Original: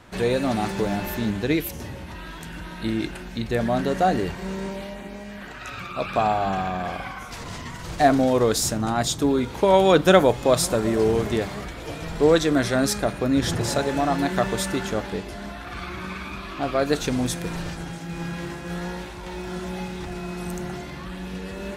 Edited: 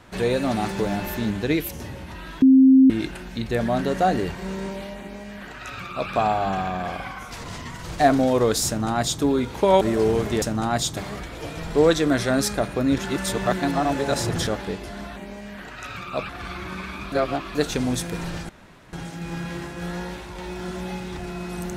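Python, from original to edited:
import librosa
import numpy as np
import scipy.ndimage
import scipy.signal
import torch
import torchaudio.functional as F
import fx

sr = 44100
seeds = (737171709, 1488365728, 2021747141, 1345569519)

y = fx.edit(x, sr, fx.bleep(start_s=2.42, length_s=0.48, hz=264.0, db=-9.0),
    fx.duplicate(start_s=4.99, length_s=1.13, to_s=15.61),
    fx.duplicate(start_s=8.67, length_s=0.55, to_s=11.42),
    fx.cut(start_s=9.81, length_s=1.0),
    fx.reverse_span(start_s=13.43, length_s=1.49),
    fx.reverse_span(start_s=16.44, length_s=0.43),
    fx.insert_room_tone(at_s=17.81, length_s=0.44), tone=tone)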